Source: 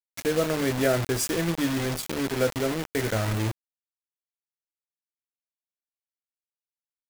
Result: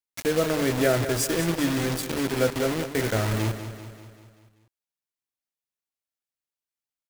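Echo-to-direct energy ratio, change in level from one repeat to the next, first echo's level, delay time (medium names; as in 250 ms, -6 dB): -9.5 dB, -5.0 dB, -11.0 dB, 194 ms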